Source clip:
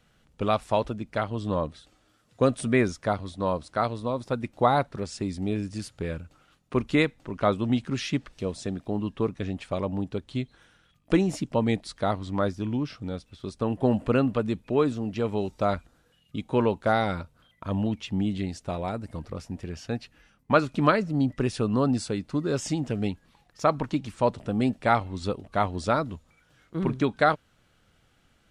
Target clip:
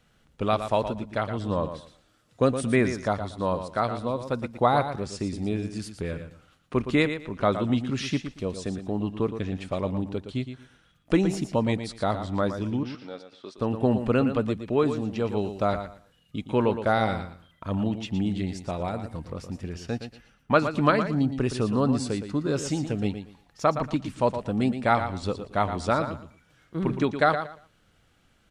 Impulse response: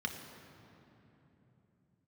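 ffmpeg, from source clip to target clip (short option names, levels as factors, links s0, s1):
-filter_complex "[0:a]asettb=1/sr,asplit=3[s0][s1][s2];[s0]atrim=end=12.834[s3];[s1]atrim=start=12.83:end=13.58,asetpts=PTS-STARTPTS,afade=t=in:d=0.004:c=qsin,afade=t=out:st=0.746:d=0.004:c=qsin,highpass=410,lowpass=5100[s4];[s2]atrim=start=13.576[s5];[s3][s4]acrossfade=d=0.004:c1=hsin:c2=qsin[s6];[s6][s5]acrossfade=d=0.004:c1=qsin:c2=hsin,aecho=1:1:116|232|348:0.335|0.0703|0.0148"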